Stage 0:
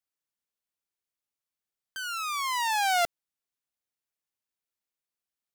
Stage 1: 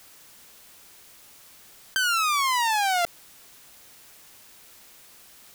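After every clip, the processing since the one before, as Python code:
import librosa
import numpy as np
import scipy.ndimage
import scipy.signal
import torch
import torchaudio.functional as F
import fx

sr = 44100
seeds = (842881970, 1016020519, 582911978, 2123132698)

y = fx.env_flatten(x, sr, amount_pct=100)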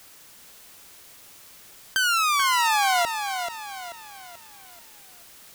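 y = fx.echo_feedback(x, sr, ms=435, feedback_pct=41, wet_db=-7.5)
y = fx.end_taper(y, sr, db_per_s=230.0)
y = y * 10.0 ** (1.5 / 20.0)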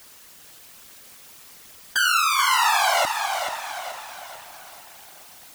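y = fx.echo_diffused(x, sr, ms=456, feedback_pct=46, wet_db=-13)
y = fx.whisperise(y, sr, seeds[0])
y = y * 10.0 ** (1.5 / 20.0)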